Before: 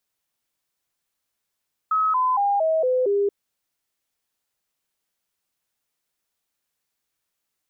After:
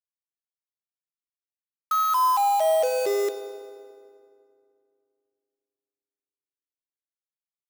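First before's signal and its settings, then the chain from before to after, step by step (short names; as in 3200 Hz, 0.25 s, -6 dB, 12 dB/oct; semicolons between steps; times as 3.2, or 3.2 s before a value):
stepped sine 1280 Hz down, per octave 3, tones 6, 0.23 s, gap 0.00 s -17.5 dBFS
companded quantiser 4-bit; HPF 460 Hz 6 dB/oct; FDN reverb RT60 2.3 s, low-frequency decay 1.55×, high-frequency decay 0.7×, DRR 9 dB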